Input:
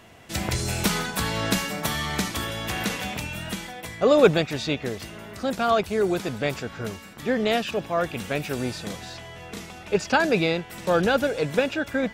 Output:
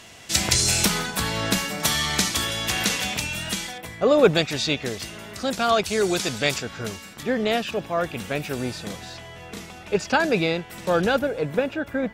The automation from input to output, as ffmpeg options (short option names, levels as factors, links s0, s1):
-af "asetnsamples=n=441:p=0,asendcmd='0.85 equalizer g 3;1.8 equalizer g 10;3.78 equalizer g -2;4.35 equalizer g 8;5.85 equalizer g 14.5;6.58 equalizer g 7;7.23 equalizer g 0.5;11.19 equalizer g -9.5',equalizer=f=6100:t=o:w=2.5:g=13.5"